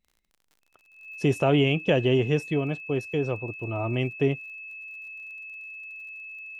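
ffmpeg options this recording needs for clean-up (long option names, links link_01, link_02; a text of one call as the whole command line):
ffmpeg -i in.wav -af "adeclick=threshold=4,bandreject=frequency=2600:width=30" out.wav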